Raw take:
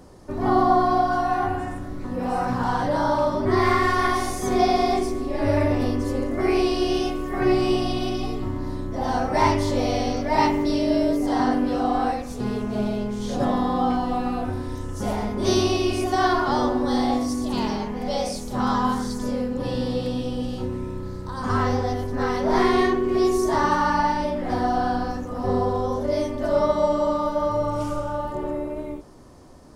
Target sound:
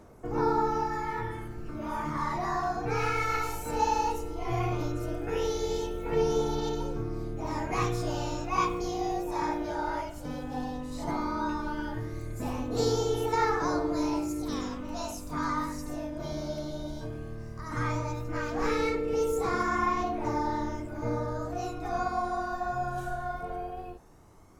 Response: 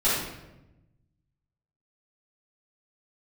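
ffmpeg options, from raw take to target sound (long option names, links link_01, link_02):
-af "asetrate=53361,aresample=44100,aphaser=in_gain=1:out_gain=1:delay=1.4:decay=0.36:speed=0.15:type=triangular,volume=-9dB"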